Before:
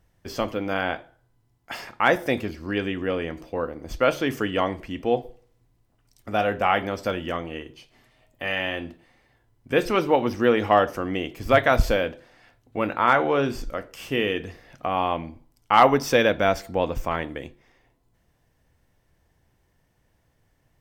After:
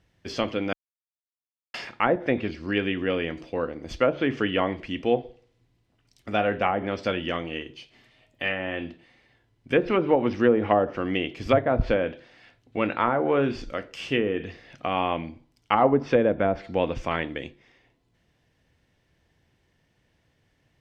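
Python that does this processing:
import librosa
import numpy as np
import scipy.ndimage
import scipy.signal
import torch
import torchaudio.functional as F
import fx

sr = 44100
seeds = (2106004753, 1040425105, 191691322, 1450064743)

y = fx.edit(x, sr, fx.silence(start_s=0.73, length_s=1.01), tone=tone)
y = fx.weighting(y, sr, curve='D')
y = fx.env_lowpass_down(y, sr, base_hz=790.0, full_db=-13.5)
y = fx.tilt_eq(y, sr, slope=-2.5)
y = y * 10.0 ** (-2.5 / 20.0)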